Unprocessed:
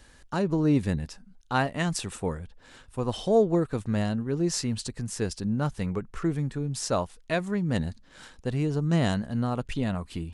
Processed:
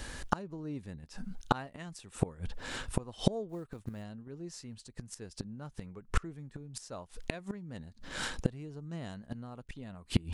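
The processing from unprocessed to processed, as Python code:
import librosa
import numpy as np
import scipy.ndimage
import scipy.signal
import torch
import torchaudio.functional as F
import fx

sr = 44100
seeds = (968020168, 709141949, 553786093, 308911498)

y = fx.quant_float(x, sr, bits=4, at=(3.49, 4.04))
y = fx.gate_flip(y, sr, shuts_db=-24.0, range_db=-29)
y = y * 10.0 ** (11.5 / 20.0)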